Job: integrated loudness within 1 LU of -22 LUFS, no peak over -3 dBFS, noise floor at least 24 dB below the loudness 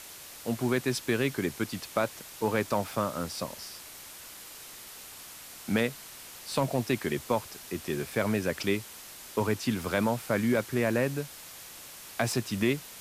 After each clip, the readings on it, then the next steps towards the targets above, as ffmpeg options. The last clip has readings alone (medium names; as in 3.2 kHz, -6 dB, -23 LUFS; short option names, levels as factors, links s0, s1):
noise floor -47 dBFS; noise floor target -55 dBFS; loudness -30.5 LUFS; peak level -13.0 dBFS; loudness target -22.0 LUFS
-> -af "afftdn=nr=8:nf=-47"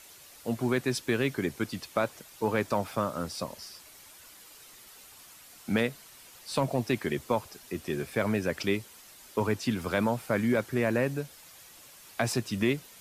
noise floor -52 dBFS; noise floor target -55 dBFS
-> -af "afftdn=nr=6:nf=-52"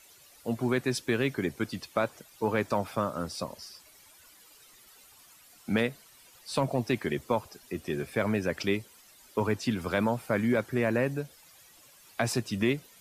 noise floor -57 dBFS; loudness -30.5 LUFS; peak level -13.0 dBFS; loudness target -22.0 LUFS
-> -af "volume=2.66"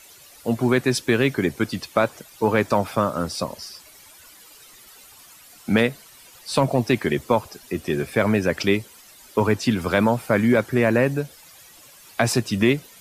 loudness -22.0 LUFS; peak level -4.5 dBFS; noise floor -48 dBFS